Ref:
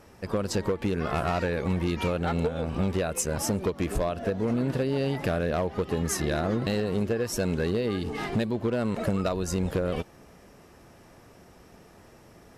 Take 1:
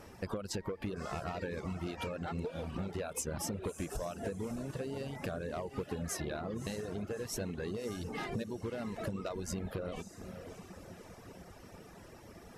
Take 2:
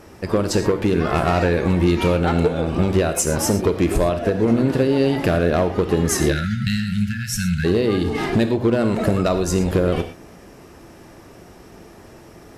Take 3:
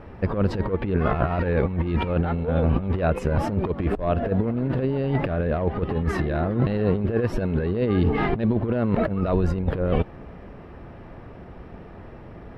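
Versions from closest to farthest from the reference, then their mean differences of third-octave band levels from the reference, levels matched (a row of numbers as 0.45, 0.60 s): 2, 1, 3; 2.5, 5.5, 7.0 dB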